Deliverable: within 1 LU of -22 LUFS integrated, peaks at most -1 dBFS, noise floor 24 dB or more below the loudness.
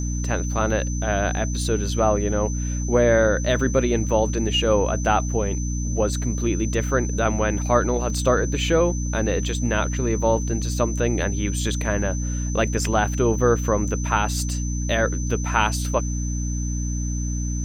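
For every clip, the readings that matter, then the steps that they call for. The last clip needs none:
hum 60 Hz; highest harmonic 300 Hz; hum level -23 dBFS; steady tone 6.1 kHz; tone level -34 dBFS; loudness -22.5 LUFS; peak level -3.0 dBFS; loudness target -22.0 LUFS
-> de-hum 60 Hz, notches 5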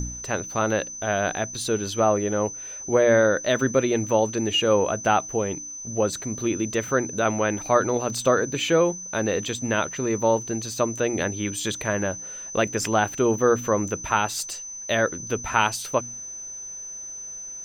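hum not found; steady tone 6.1 kHz; tone level -34 dBFS
-> band-stop 6.1 kHz, Q 30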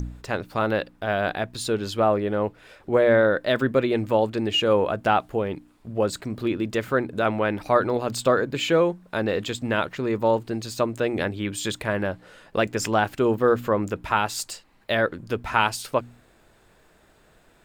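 steady tone not found; loudness -24.0 LUFS; peak level -4.0 dBFS; loudness target -22.0 LUFS
-> trim +2 dB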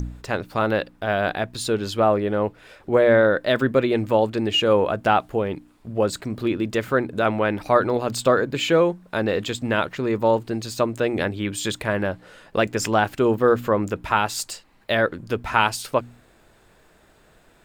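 loudness -22.0 LUFS; peak level -2.0 dBFS; noise floor -56 dBFS

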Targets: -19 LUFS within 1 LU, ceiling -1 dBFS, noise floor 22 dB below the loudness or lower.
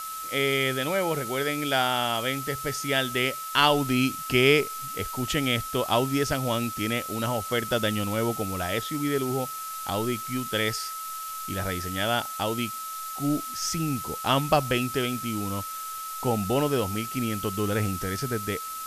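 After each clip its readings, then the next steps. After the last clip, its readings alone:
steady tone 1.3 kHz; tone level -34 dBFS; noise floor -36 dBFS; noise floor target -49 dBFS; loudness -26.5 LUFS; peak level -5.5 dBFS; loudness target -19.0 LUFS
-> band-stop 1.3 kHz, Q 30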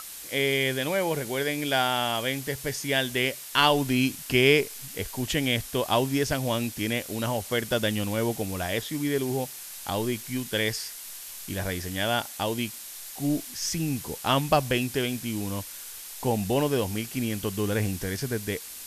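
steady tone not found; noise floor -41 dBFS; noise floor target -49 dBFS
-> noise reduction 8 dB, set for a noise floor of -41 dBFS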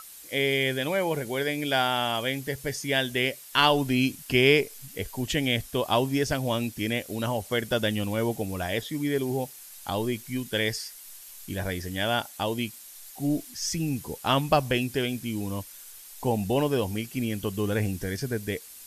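noise floor -46 dBFS; noise floor target -50 dBFS
-> noise reduction 6 dB, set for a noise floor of -46 dBFS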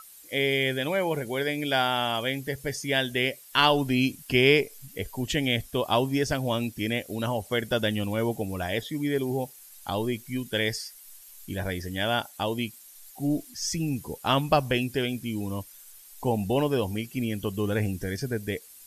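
noise floor -50 dBFS; loudness -27.5 LUFS; peak level -5.5 dBFS; loudness target -19.0 LUFS
-> trim +8.5 dB; peak limiter -1 dBFS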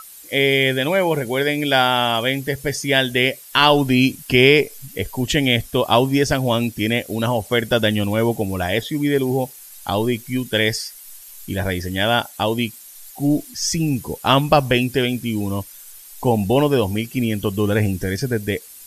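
loudness -19.0 LUFS; peak level -1.0 dBFS; noise floor -41 dBFS

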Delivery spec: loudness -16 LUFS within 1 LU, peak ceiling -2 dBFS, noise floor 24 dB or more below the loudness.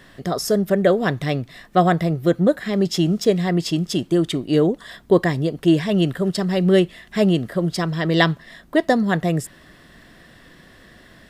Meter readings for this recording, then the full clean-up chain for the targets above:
loudness -20.0 LUFS; peak level -2.0 dBFS; loudness target -16.0 LUFS
-> trim +4 dB; peak limiter -2 dBFS

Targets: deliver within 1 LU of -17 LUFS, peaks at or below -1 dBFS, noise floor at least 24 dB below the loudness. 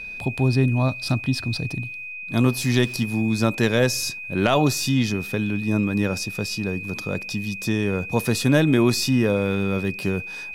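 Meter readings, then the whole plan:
steady tone 2.5 kHz; tone level -32 dBFS; loudness -22.5 LUFS; peak level -5.5 dBFS; loudness target -17.0 LUFS
-> band-stop 2.5 kHz, Q 30; trim +5.5 dB; peak limiter -1 dBFS

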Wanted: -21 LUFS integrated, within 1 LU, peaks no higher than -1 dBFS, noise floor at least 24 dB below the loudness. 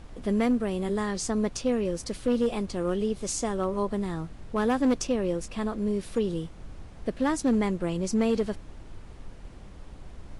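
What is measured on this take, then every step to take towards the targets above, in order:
clipped samples 0.7%; clipping level -18.0 dBFS; noise floor -45 dBFS; noise floor target -53 dBFS; loudness -28.5 LUFS; peak level -18.0 dBFS; loudness target -21.0 LUFS
-> clip repair -18 dBFS; noise print and reduce 8 dB; trim +7.5 dB

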